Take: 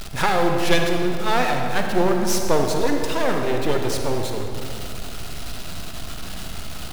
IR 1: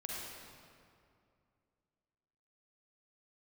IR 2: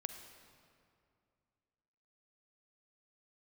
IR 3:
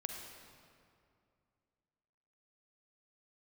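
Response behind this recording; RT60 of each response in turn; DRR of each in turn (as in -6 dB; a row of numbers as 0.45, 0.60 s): 3; 2.4, 2.4, 2.4 s; -4.0, 7.0, 2.5 dB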